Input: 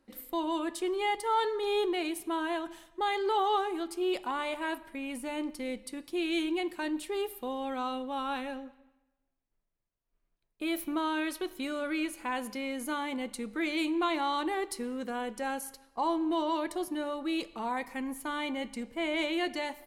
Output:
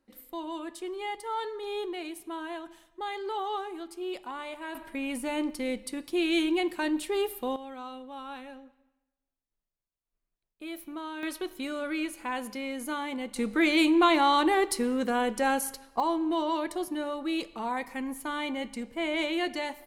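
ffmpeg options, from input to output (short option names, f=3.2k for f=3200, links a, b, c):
-af "asetnsamples=n=441:p=0,asendcmd='4.75 volume volume 4.5dB;7.56 volume volume -7dB;11.23 volume volume 0.5dB;13.36 volume volume 8dB;16 volume volume 1.5dB',volume=-5dB"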